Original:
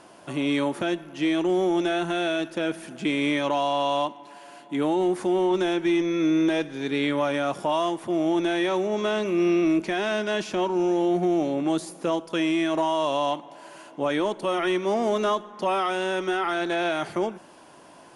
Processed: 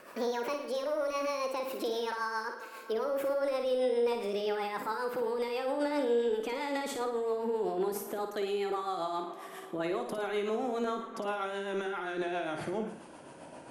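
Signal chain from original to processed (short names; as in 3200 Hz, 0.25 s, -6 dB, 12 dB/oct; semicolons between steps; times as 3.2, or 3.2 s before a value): speed glide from 171% -> 94%; bell 4700 Hz -6.5 dB 1.6 oct; limiter -26.5 dBFS, peak gain reduction 11 dB; rotary speaker horn 7.5 Hz; on a send: flutter echo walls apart 9.4 m, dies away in 0.48 s; on the sum: gain +2.5 dB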